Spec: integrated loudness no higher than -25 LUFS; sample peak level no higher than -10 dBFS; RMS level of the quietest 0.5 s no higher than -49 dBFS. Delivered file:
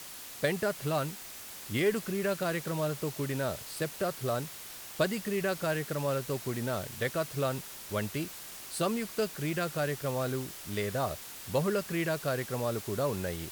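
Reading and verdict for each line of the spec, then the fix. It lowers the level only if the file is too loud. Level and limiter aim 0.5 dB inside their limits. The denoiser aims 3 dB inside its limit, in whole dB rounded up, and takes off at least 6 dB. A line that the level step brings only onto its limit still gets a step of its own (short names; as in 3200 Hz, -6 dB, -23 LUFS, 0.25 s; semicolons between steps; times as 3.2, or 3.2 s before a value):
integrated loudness -33.0 LUFS: OK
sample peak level -13.0 dBFS: OK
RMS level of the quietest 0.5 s -45 dBFS: fail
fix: denoiser 7 dB, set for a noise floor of -45 dBFS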